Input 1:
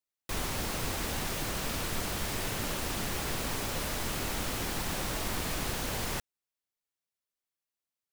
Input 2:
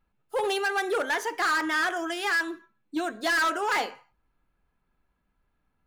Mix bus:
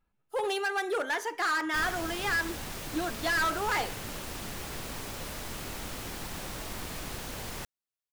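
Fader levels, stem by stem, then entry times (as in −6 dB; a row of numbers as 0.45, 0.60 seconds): −5.0, −3.5 decibels; 1.45, 0.00 seconds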